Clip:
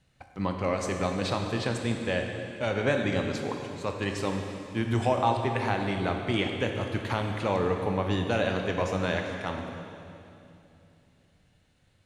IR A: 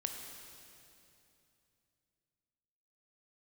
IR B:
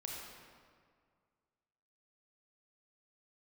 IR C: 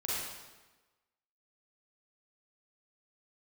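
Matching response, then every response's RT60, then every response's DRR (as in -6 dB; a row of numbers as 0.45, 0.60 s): A; 2.8, 2.0, 1.2 s; 3.0, -2.5, -7.5 dB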